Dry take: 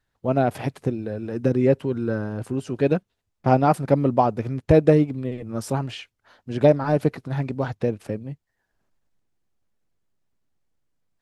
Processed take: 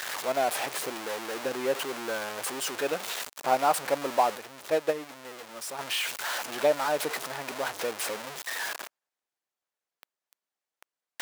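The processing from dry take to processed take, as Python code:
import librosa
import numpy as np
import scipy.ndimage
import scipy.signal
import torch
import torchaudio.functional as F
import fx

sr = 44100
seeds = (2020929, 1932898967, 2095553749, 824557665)

y = x + 0.5 * 10.0 ** (-21.5 / 20.0) * np.sign(x)
y = scipy.signal.sosfilt(scipy.signal.butter(2, 660.0, 'highpass', fs=sr, output='sos'), y)
y = fx.upward_expand(y, sr, threshold_db=-22.0, expansion=2.5, at=(4.37, 5.79))
y = y * 10.0 ** (-3.5 / 20.0)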